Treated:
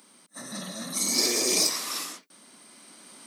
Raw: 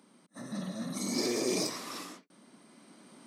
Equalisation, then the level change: tilt +3 dB/oct; +4.5 dB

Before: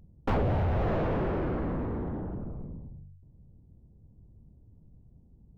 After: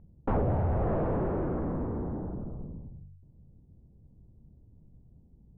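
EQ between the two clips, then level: LPF 1200 Hz 12 dB/oct; notches 50/100 Hz; 0.0 dB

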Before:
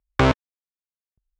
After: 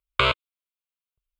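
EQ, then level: EQ curve 330 Hz 0 dB, 2100 Hz +13 dB, 6000 Hz +9 dB; dynamic EQ 4400 Hz, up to +6 dB, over -27 dBFS, Q 0.73; fixed phaser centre 1200 Hz, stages 8; -7.5 dB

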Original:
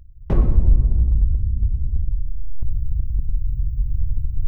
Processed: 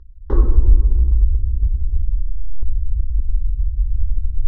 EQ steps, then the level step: air absorption 170 m; bell 110 Hz -14.5 dB 0.33 oct; fixed phaser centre 660 Hz, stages 6; +4.0 dB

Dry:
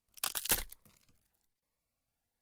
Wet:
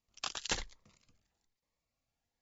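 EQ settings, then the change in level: brick-wall FIR low-pass 7500 Hz; notch 1500 Hz, Q 13; 0.0 dB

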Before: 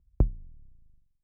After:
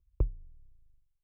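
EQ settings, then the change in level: fixed phaser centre 1100 Hz, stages 8; -4.0 dB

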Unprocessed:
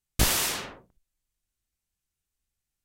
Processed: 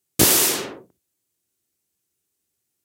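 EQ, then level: HPF 89 Hz 24 dB/oct; bell 360 Hz +12 dB 1.1 oct; high shelf 5300 Hz +9.5 dB; +3.0 dB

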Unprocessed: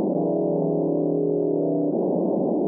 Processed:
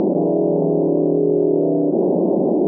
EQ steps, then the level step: air absorption 180 m; bell 370 Hz +4 dB 0.36 oct; +4.5 dB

